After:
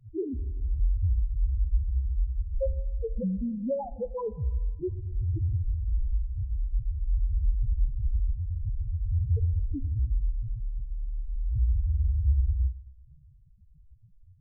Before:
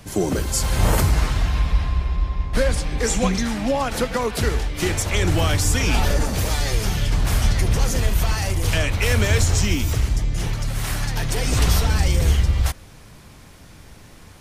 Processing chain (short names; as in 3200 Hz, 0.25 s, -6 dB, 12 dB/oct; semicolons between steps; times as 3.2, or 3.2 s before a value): loudest bins only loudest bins 1; Schroeder reverb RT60 1.5 s, combs from 26 ms, DRR 16.5 dB; gain -1 dB